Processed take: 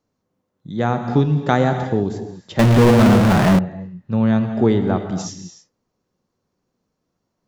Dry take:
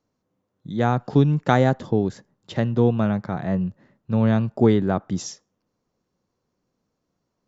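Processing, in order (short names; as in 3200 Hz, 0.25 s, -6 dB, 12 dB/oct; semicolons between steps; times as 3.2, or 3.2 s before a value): non-linear reverb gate 0.33 s flat, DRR 6.5 dB; 2.59–3.59 power-law curve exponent 0.35; gain +1 dB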